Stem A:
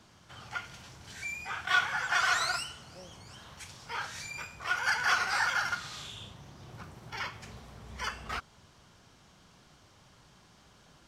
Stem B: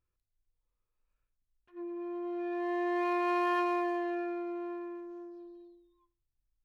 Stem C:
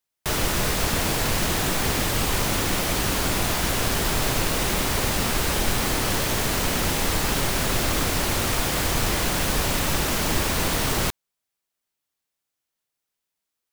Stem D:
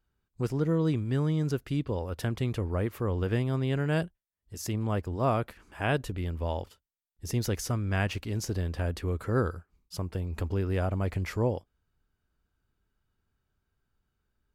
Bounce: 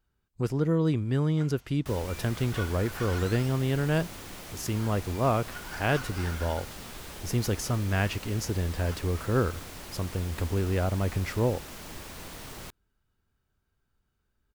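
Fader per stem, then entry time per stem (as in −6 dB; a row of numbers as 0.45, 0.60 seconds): −13.0 dB, muted, −19.0 dB, +1.5 dB; 0.85 s, muted, 1.60 s, 0.00 s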